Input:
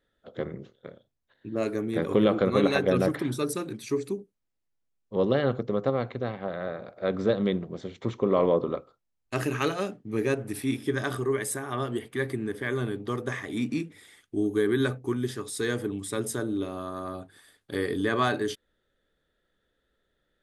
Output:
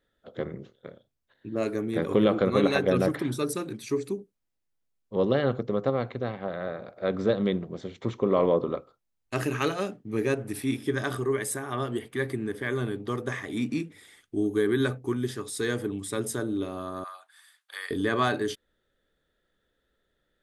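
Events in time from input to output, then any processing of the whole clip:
17.04–17.91 s: high-pass 950 Hz 24 dB/octave

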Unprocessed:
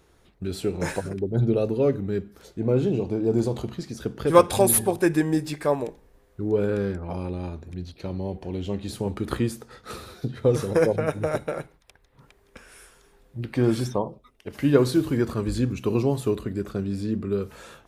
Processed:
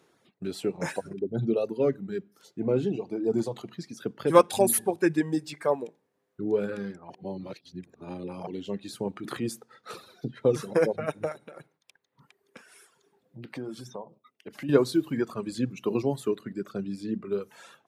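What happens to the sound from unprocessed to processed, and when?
7.10–8.47 s: reverse
9.11–9.60 s: transient shaper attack -6 dB, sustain +4 dB
11.32–14.69 s: compression 2.5:1, threshold -34 dBFS
whole clip: high-pass 140 Hz 24 dB/octave; reverb removal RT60 1.7 s; treble shelf 11 kHz -5.5 dB; trim -2 dB

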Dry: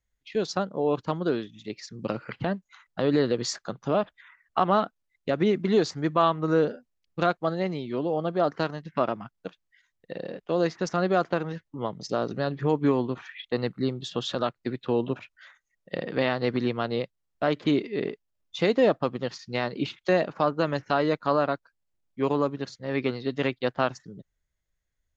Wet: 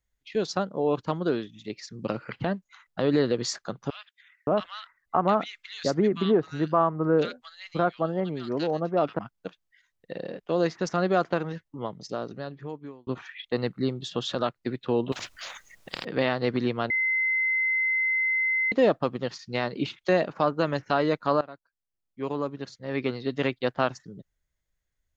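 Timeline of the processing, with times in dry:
3.90–9.19 s: bands offset in time highs, lows 570 ms, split 1.8 kHz
11.44–13.07 s: fade out
15.12–16.05 s: spectrum-flattening compressor 10:1
16.90–18.72 s: bleep 2.06 kHz -22 dBFS
21.41–23.34 s: fade in, from -19 dB

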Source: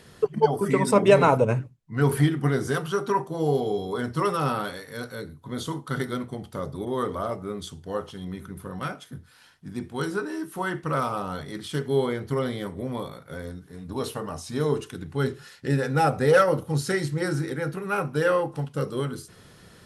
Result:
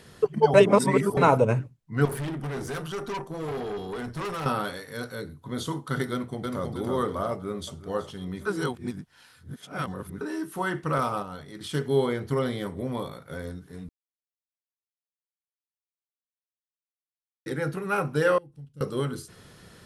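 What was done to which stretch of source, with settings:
0.54–1.17 s: reverse
2.05–4.46 s: valve stage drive 29 dB, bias 0.5
6.11–6.72 s: echo throw 320 ms, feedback 40%, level -2.5 dB
7.30–7.86 s: echo throw 370 ms, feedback 45%, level -15 dB
8.46–10.21 s: reverse
10.98–11.61 s: gate -31 dBFS, range -7 dB
13.89–17.46 s: mute
18.38–18.81 s: amplifier tone stack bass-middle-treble 10-0-1

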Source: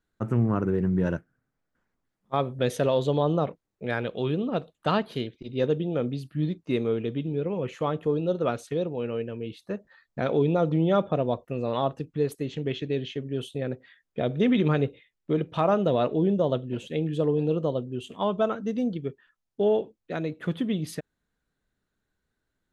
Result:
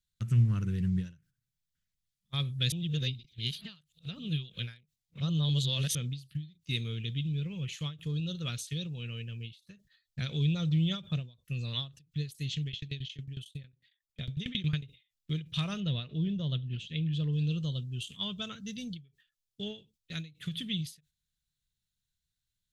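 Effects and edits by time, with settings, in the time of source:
2.72–5.95 s: reverse
12.64–14.84 s: tremolo saw down 11 Hz, depth 95%
15.80–17.33 s: distance through air 170 m
whole clip: gate -45 dBFS, range -7 dB; FFT filter 150 Hz 0 dB, 270 Hz -19 dB, 770 Hz -28 dB, 3.4 kHz +7 dB; endings held to a fixed fall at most 180 dB/s; trim +1.5 dB

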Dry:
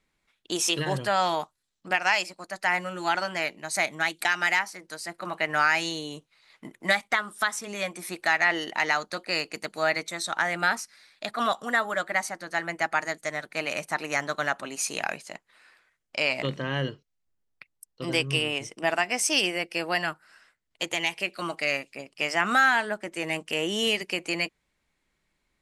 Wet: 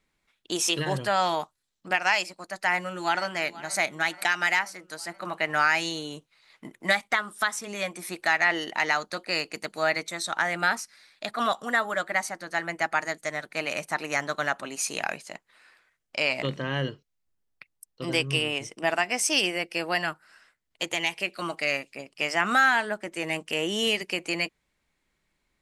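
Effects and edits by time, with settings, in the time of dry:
2.66–3.30 s: echo throw 480 ms, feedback 65%, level -18 dB

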